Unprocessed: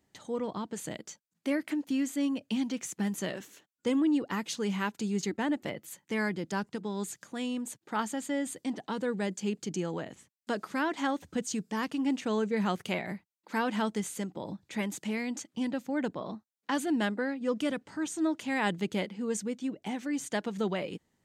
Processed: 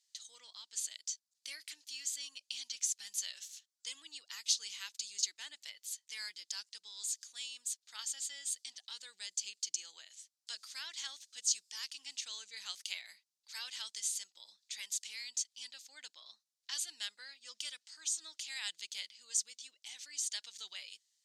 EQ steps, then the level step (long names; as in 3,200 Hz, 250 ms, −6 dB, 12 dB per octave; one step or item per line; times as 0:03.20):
four-pole ladder band-pass 5,600 Hz, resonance 35%
high-shelf EQ 4,000 Hz +5 dB
+13.0 dB